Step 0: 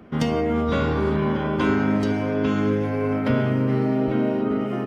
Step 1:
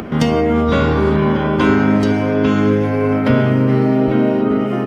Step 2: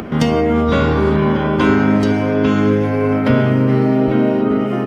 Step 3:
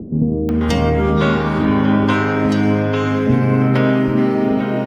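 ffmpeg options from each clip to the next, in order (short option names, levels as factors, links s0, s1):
-af "acompressor=mode=upward:threshold=0.0501:ratio=2.5,volume=2.37"
-af anull
-filter_complex "[0:a]acrossover=split=430[s0][s1];[s1]adelay=490[s2];[s0][s2]amix=inputs=2:normalize=0"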